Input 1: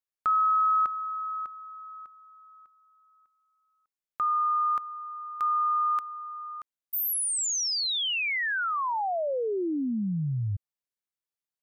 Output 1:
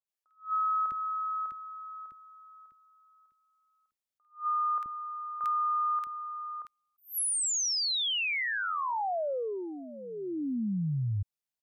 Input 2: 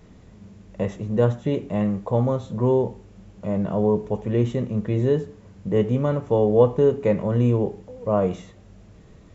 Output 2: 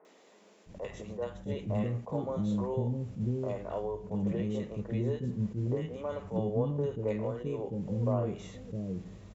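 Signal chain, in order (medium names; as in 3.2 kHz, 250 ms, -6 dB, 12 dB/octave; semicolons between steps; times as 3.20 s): compression 6:1, threshold -27 dBFS; three bands offset in time mids, highs, lows 50/660 ms, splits 370/1400 Hz; attacks held to a fixed rise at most 230 dB/s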